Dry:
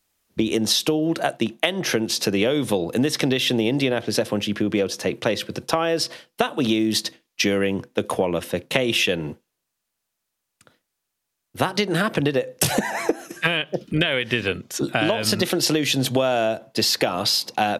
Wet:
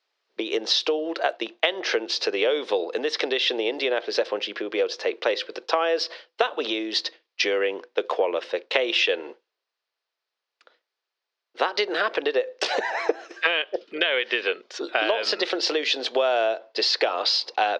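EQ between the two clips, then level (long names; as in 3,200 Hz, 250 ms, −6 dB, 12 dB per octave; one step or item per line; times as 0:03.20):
elliptic band-pass filter 410–4,800 Hz, stop band 50 dB
0.0 dB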